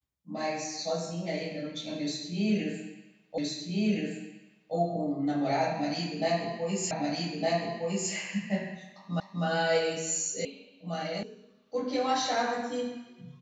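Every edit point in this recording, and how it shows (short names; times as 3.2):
3.38 repeat of the last 1.37 s
6.91 repeat of the last 1.21 s
9.2 repeat of the last 0.25 s
10.45 sound cut off
11.23 sound cut off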